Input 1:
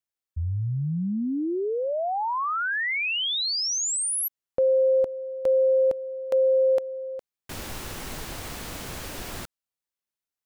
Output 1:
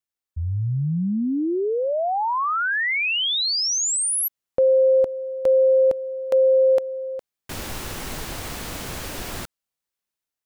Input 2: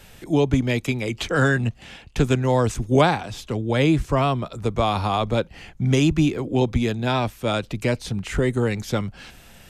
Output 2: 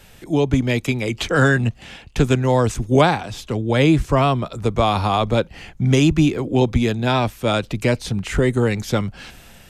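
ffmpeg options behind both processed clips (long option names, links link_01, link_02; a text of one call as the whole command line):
ffmpeg -i in.wav -af "dynaudnorm=framelen=190:gausssize=5:maxgain=4dB" out.wav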